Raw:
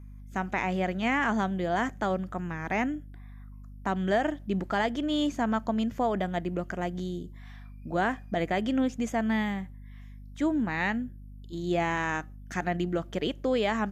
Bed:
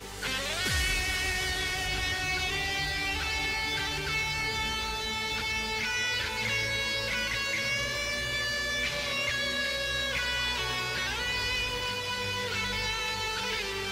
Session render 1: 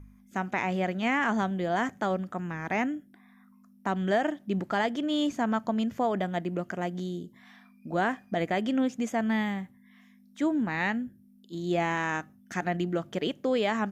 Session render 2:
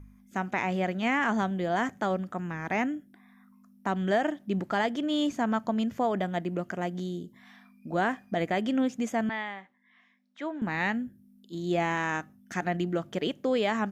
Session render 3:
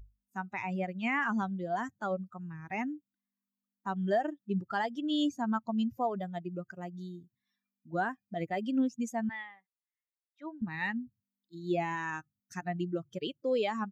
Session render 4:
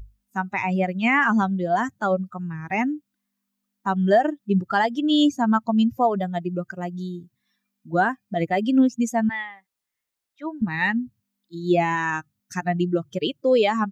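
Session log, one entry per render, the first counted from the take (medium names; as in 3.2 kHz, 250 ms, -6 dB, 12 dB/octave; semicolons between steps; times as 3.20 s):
de-hum 50 Hz, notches 3
9.29–10.62 s: band-pass 540–3400 Hz
expander on every frequency bin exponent 2
trim +11.5 dB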